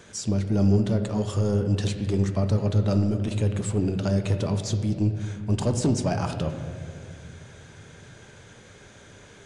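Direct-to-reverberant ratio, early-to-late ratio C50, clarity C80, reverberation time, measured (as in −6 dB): 6.0 dB, 8.0 dB, 9.0 dB, 2.2 s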